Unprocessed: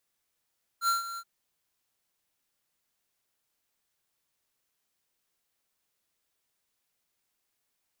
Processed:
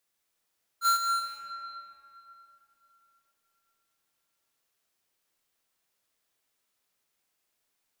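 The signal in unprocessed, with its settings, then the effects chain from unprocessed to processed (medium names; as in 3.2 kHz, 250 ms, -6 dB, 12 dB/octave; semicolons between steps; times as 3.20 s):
ADSR square 1.37 kHz, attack 71 ms, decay 143 ms, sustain -13.5 dB, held 0.37 s, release 56 ms -24.5 dBFS
bass shelf 160 Hz -5 dB; in parallel at -9.5 dB: bit crusher 5-bit; on the sum: algorithmic reverb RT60 3.5 s, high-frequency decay 0.6×, pre-delay 105 ms, DRR 2 dB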